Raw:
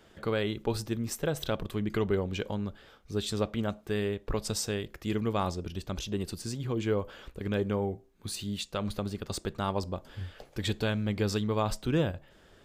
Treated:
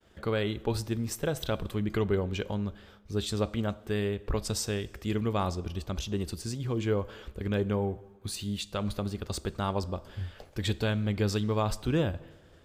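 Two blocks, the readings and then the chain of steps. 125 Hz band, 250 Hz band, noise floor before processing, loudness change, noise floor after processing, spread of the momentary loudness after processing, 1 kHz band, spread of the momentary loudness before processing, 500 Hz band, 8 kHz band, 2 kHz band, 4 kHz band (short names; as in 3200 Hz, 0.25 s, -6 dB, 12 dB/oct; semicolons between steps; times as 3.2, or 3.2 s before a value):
+2.5 dB, +0.5 dB, -60 dBFS, +0.5 dB, -56 dBFS, 8 LU, 0.0 dB, 8 LU, 0.0 dB, 0.0 dB, 0.0 dB, 0.0 dB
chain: expander -54 dBFS; bell 69 Hz +9.5 dB 0.62 oct; plate-style reverb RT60 1.5 s, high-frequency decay 0.8×, DRR 18.5 dB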